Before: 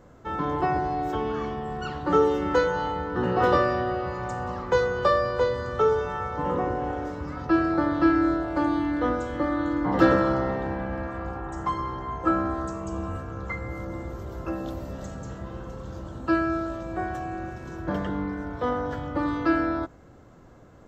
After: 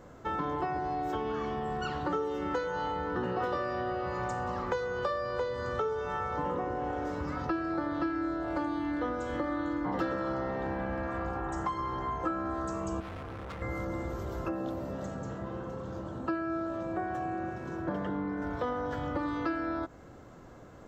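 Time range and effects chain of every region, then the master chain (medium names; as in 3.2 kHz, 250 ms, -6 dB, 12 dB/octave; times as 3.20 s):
13.00–13.62 s: inverse Chebyshev low-pass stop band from 2.9 kHz + hard clipper -39.5 dBFS
14.48–18.42 s: high-pass 97 Hz + treble shelf 2.3 kHz -9 dB
whole clip: bass shelf 210 Hz -4 dB; compression 6:1, threshold -32 dBFS; trim +2 dB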